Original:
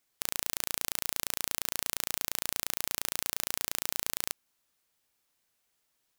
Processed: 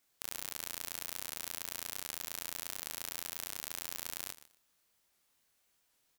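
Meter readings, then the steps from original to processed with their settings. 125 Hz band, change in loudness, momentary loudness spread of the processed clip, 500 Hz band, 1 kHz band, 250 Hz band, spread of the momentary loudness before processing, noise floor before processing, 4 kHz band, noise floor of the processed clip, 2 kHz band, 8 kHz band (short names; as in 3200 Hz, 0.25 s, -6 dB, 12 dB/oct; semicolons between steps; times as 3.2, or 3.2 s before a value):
-7.5 dB, -7.5 dB, 2 LU, -7.5 dB, -7.5 dB, -7.5 dB, 1 LU, -77 dBFS, -7.5 dB, -76 dBFS, -7.5 dB, -7.5 dB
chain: limiter -12 dBFS, peak gain reduction 9 dB; doubler 25 ms -4 dB; on a send: feedback echo 0.118 s, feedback 22%, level -16 dB; on the sum: record warp 78 rpm, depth 250 cents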